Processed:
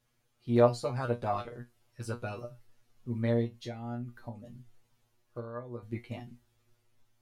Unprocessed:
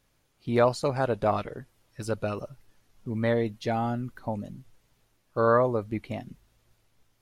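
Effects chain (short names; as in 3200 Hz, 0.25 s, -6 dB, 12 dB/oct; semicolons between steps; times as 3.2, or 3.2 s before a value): 3.44–5.83 compressor 8:1, threshold -33 dBFS, peak gain reduction 16 dB; resonator 120 Hz, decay 0.17 s, harmonics all, mix 100%; gain +2 dB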